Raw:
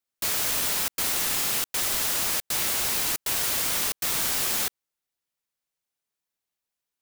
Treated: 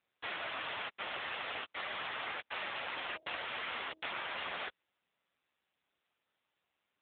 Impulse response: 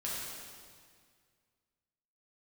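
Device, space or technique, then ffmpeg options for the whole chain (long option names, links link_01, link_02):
voicemail: -filter_complex "[0:a]asettb=1/sr,asplit=3[link_01][link_02][link_03];[link_01]atrim=end=2.734[link_04];[link_02]atrim=start=2.73:end=4.34,asetpts=PTS-STARTPTS,afade=type=in:duration=0.004:curve=qsin,afade=type=out:start_time=1.606:duration=0.004:curve=qsin,bandreject=frequency=318.1:width_type=h:width=4,bandreject=frequency=636.2:width_type=h:width=4[link_05];[link_03]atrim=start=4.336[link_06];[link_04][link_05]acrossfade=duration=0.004:curve1=hsin:curve2=qsin[link_07];[link_07][link_06]acrossfade=duration=0.004:curve1=qsin:curve2=hsin,highpass=420,lowpass=3200,acompressor=threshold=-36dB:ratio=8,volume=4.5dB" -ar 8000 -c:a libopencore_amrnb -b:a 6700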